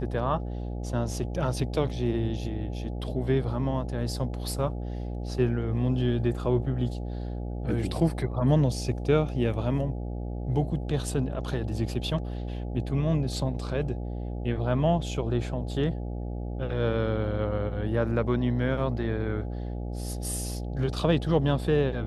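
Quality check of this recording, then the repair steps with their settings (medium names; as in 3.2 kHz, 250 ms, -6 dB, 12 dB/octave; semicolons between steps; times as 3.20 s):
buzz 60 Hz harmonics 14 -33 dBFS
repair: de-hum 60 Hz, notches 14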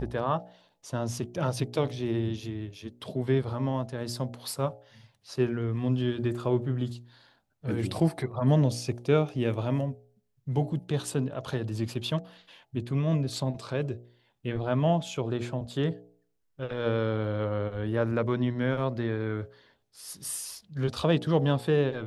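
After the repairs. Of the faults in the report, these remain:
nothing left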